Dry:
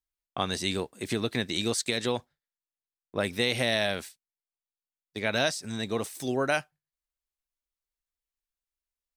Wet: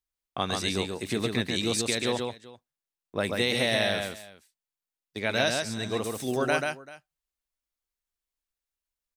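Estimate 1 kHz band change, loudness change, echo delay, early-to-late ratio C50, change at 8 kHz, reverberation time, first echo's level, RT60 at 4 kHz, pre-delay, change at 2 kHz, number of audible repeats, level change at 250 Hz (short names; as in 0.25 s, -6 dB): +1.5 dB, +1.0 dB, 0.136 s, none, +1.5 dB, none, -4.0 dB, none, none, +1.5 dB, 2, +1.5 dB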